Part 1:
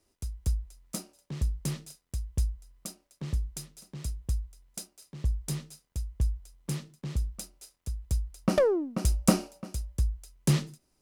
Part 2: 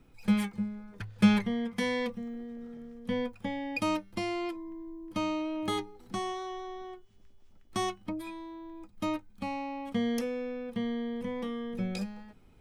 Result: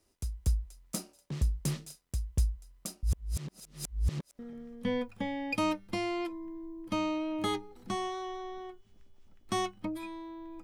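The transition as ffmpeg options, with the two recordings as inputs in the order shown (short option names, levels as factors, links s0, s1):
-filter_complex "[0:a]apad=whole_dur=10.63,atrim=end=10.63,asplit=2[s0][s1];[s0]atrim=end=3.032[s2];[s1]atrim=start=3.028:end=4.392,asetpts=PTS-STARTPTS,areverse[s3];[1:a]atrim=start=2.628:end=8.87[s4];[s2][s3]acrossfade=d=0.004:c1=hsin:c2=hsin[s5];[s5][s4]acrossfade=d=0.004:c1=hsin:c2=hsin"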